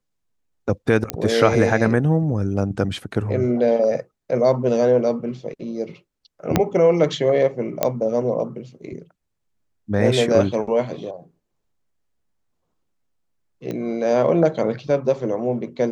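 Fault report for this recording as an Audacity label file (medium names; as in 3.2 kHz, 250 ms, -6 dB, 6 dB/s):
1.100000	1.100000	pop -5 dBFS
6.560000	6.560000	pop -2 dBFS
7.830000	7.830000	pop -4 dBFS
13.710000	13.710000	pop -17 dBFS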